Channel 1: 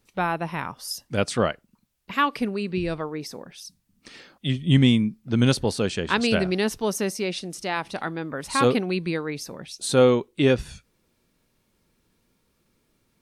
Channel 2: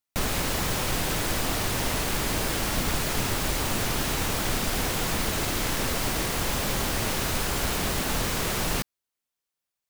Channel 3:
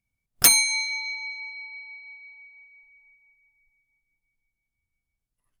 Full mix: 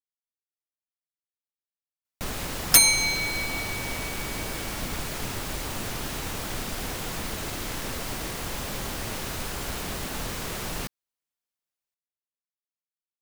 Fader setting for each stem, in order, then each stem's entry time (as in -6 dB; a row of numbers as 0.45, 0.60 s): off, -5.5 dB, 0.0 dB; off, 2.05 s, 2.30 s